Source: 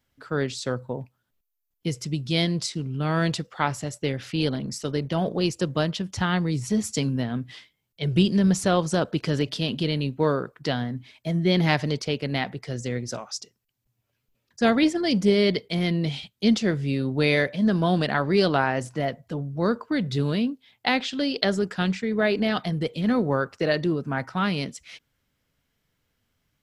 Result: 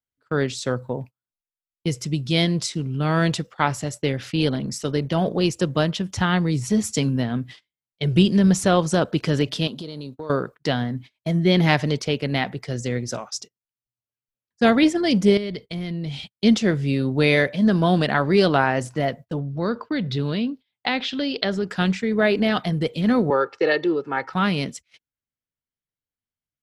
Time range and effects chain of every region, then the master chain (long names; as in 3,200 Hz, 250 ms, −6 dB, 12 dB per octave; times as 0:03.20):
0:09.67–0:10.30: high-pass filter 270 Hz 6 dB per octave + flat-topped bell 2,200 Hz −10.5 dB 1.1 octaves + downward compressor 8 to 1, threshold −33 dBFS
0:15.37–0:16.20: downward compressor 3 to 1, threshold −35 dBFS + low-shelf EQ 120 Hz +11.5 dB
0:19.39–0:21.70: downward compressor 1.5 to 1, threshold −29 dBFS + high shelf with overshoot 6,000 Hz −9 dB, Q 1.5
0:23.30–0:24.33: three-way crossover with the lows and the highs turned down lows −20 dB, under 240 Hz, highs −20 dB, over 5,100 Hz + comb filter 2.3 ms + upward compression, threshold −38 dBFS
whole clip: noise gate −40 dBFS, range −27 dB; dynamic equaliser 4,600 Hz, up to −4 dB, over −46 dBFS, Q 5.4; level +3.5 dB